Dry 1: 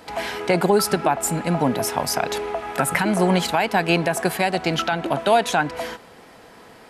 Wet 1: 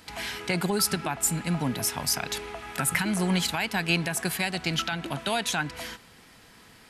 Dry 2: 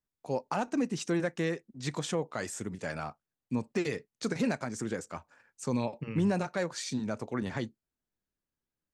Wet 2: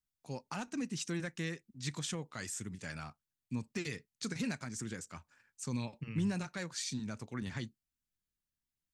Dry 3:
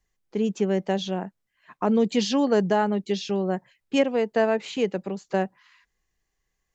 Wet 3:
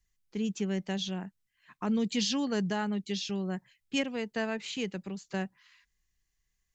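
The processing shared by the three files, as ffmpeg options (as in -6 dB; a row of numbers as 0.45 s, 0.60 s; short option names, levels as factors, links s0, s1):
-af "equalizer=f=580:w=0.54:g=-14.5"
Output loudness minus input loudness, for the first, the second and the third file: -6.0 LU, -6.5 LU, -8.0 LU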